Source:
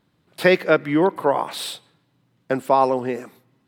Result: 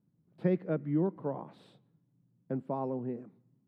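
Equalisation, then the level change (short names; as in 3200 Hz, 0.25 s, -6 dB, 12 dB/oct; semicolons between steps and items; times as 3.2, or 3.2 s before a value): band-pass 160 Hz, Q 1.6; -3.0 dB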